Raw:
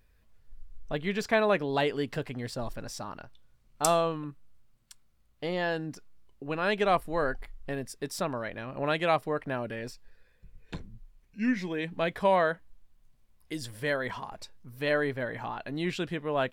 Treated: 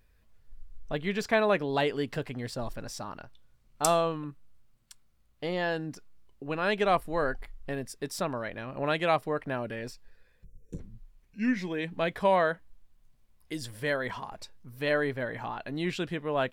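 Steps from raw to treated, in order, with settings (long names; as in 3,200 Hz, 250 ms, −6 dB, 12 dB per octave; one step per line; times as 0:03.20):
gain on a spectral selection 0:10.44–0:10.79, 560–5,400 Hz −23 dB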